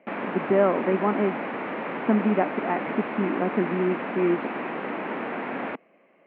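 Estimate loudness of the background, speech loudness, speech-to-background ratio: −31.0 LKFS, −26.0 LKFS, 5.0 dB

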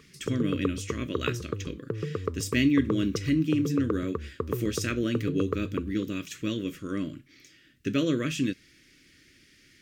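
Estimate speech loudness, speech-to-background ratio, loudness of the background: −29.5 LKFS, 5.5 dB, −35.0 LKFS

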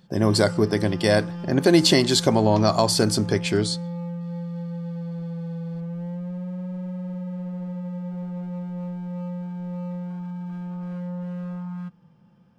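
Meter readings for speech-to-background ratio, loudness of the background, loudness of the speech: 12.0 dB, −32.5 LKFS, −20.5 LKFS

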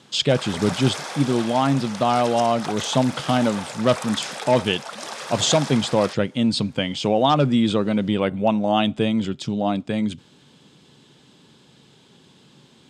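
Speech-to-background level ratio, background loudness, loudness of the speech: 11.0 dB, −32.5 LKFS, −21.5 LKFS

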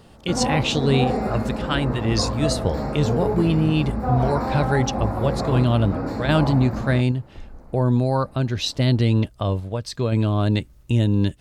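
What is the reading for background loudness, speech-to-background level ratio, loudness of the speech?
−26.0 LKFS, 3.5 dB, −22.5 LKFS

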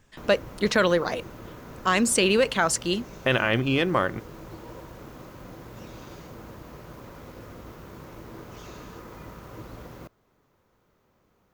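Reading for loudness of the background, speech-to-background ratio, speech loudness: −43.5 LKFS, 20.0 dB, −23.5 LKFS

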